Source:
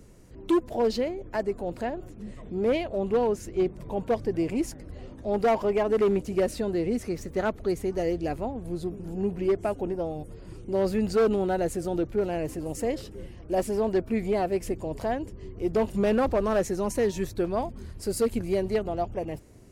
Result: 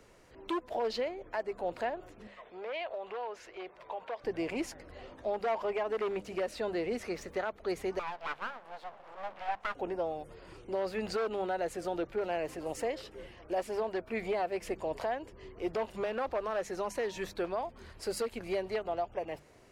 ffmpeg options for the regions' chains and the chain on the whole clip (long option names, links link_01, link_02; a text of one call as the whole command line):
ffmpeg -i in.wav -filter_complex "[0:a]asettb=1/sr,asplit=3[link_01][link_02][link_03];[link_01]atrim=end=2.274[link_04];[link_02]atrim=start=2.27:end=4.24,asetpts=PTS-STARTPTS,afade=type=in:duration=0.004:curve=qsin,afade=type=out:start_time=1.966:duration=0.004:curve=qsin,acrossover=split=480 5100:gain=0.141 1 0.2[link_05][link_06][link_07];[link_05][link_06][link_07]amix=inputs=3:normalize=0,acompressor=threshold=-35dB:ratio=5:attack=3.2:release=140:knee=1:detection=peak[link_08];[link_03]atrim=start=4.236[link_09];[link_04][link_08]acrossfade=duration=0.004:curve1=hsin:curve2=qsin[link_10];[link_10][link_09]acrossfade=duration=0.004:curve1=qsin:curve2=hsin,asettb=1/sr,asplit=3[link_11][link_12][link_13];[link_11]atrim=end=7.994[link_14];[link_12]atrim=start=7.99:end=9.75,asetpts=PTS-STARTPTS,afade=type=in:duration=0.004:curve=qsin,afade=type=out:start_time=1.756:duration=0.004:curve=qsin,bandpass=frequency=1200:width_type=q:width=0.68,aeval=exprs='abs(val(0))':channel_layout=same[link_15];[link_13]atrim=start=9.746[link_16];[link_14][link_15]acrossfade=duration=0.004:curve1=hsin:curve2=qsin[link_17];[link_17][link_16]acrossfade=duration=0.004:curve1=qsin:curve2=hsin,acrossover=split=510 4600:gain=0.158 1 0.251[link_18][link_19][link_20];[link_18][link_19][link_20]amix=inputs=3:normalize=0,bandreject=frequency=50:width_type=h:width=6,bandreject=frequency=100:width_type=h:width=6,bandreject=frequency=150:width_type=h:width=6,bandreject=frequency=200:width_type=h:width=6,alimiter=level_in=4dB:limit=-24dB:level=0:latency=1:release=288,volume=-4dB,volume=3.5dB" out.wav